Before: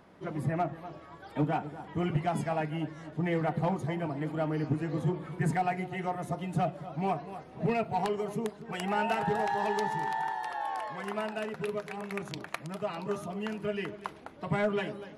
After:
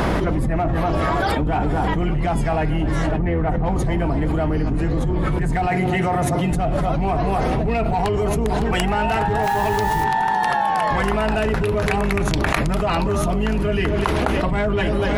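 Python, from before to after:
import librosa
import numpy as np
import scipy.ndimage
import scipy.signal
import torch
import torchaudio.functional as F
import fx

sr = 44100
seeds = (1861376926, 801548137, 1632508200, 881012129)

p1 = fx.octave_divider(x, sr, octaves=2, level_db=2.0)
p2 = fx.gaussian_blur(p1, sr, sigma=3.1, at=(3.11, 3.66))
p3 = 10.0 ** (-28.5 / 20.0) * np.tanh(p2 / 10.0 ** (-28.5 / 20.0))
p4 = p2 + (p3 * 10.0 ** (-5.0 / 20.0))
p5 = fx.highpass(p4, sr, hz=82.0, slope=24, at=(5.69, 6.51))
p6 = p5 + fx.echo_thinned(p5, sr, ms=558, feedback_pct=44, hz=420.0, wet_db=-21.0, dry=0)
p7 = fx.quant_dither(p6, sr, seeds[0], bits=8, dither='triangular', at=(9.42, 10.03), fade=0.02)
y = fx.env_flatten(p7, sr, amount_pct=100)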